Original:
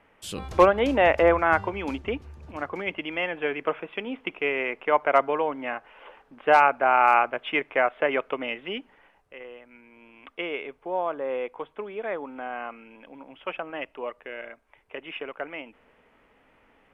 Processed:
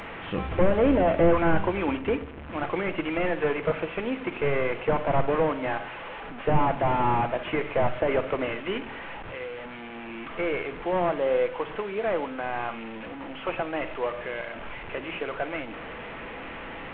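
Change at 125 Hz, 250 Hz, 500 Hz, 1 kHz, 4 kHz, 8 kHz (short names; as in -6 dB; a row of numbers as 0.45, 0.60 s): +10.0 dB, +4.5 dB, 0.0 dB, -4.0 dB, -2.5 dB, n/a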